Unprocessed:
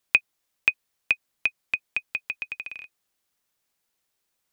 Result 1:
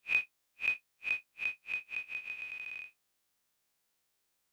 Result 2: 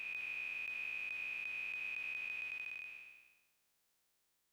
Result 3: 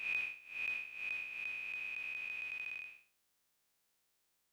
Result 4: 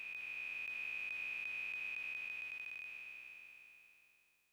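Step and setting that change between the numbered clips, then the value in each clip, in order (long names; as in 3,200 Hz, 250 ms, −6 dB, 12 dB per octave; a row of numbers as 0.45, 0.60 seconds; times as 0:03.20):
spectrum smeared in time, width: 81, 619, 238, 1,660 milliseconds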